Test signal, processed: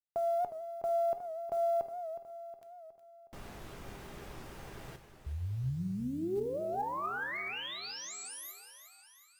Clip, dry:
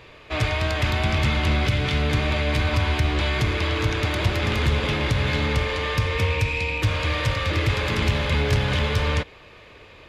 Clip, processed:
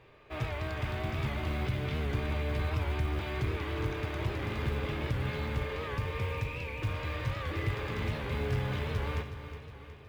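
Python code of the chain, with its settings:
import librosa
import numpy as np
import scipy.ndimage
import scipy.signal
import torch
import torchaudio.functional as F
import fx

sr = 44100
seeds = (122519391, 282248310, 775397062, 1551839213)

p1 = fx.high_shelf(x, sr, hz=2800.0, db=-12.0)
p2 = fx.notch(p1, sr, hz=4100.0, q=27.0)
p3 = fx.comb_fb(p2, sr, f0_hz=400.0, decay_s=0.36, harmonics='all', damping=0.0, mix_pct=70)
p4 = fx.tube_stage(p3, sr, drive_db=17.0, bias=0.3)
p5 = fx.quant_float(p4, sr, bits=4)
p6 = p5 + fx.echo_feedback(p5, sr, ms=365, feedback_pct=55, wet_db=-11.5, dry=0)
p7 = fx.rev_double_slope(p6, sr, seeds[0], early_s=0.72, late_s=2.8, knee_db=-18, drr_db=10.0)
y = fx.record_warp(p7, sr, rpm=78.0, depth_cents=100.0)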